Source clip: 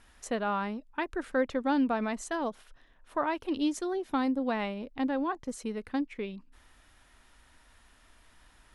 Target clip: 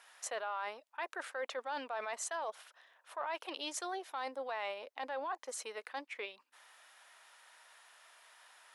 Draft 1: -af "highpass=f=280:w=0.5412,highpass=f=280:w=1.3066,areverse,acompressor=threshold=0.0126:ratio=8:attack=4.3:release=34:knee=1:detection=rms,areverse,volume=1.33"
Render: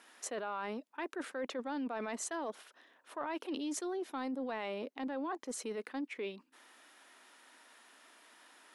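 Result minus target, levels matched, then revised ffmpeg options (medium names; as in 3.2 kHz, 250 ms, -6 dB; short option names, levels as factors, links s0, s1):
250 Hz band +13.0 dB
-af "highpass=f=580:w=0.5412,highpass=f=580:w=1.3066,areverse,acompressor=threshold=0.0126:ratio=8:attack=4.3:release=34:knee=1:detection=rms,areverse,volume=1.33"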